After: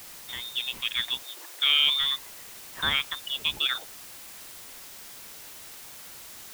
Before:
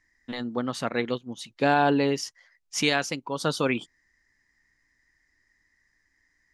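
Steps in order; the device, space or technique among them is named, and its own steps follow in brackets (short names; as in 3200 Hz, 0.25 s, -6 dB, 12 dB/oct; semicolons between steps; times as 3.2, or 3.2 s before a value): scrambled radio voice (BPF 350–2900 Hz; inverted band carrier 3900 Hz; white noise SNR 13 dB); 1.23–1.82 steep high-pass 300 Hz 72 dB/oct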